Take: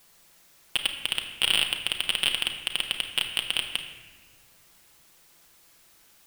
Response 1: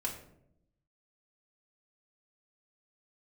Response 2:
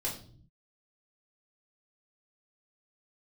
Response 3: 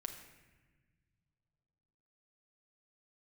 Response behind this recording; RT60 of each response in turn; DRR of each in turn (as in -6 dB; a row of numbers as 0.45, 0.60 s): 3; 0.75, 0.50, 1.3 s; -2.0, -4.5, 3.0 dB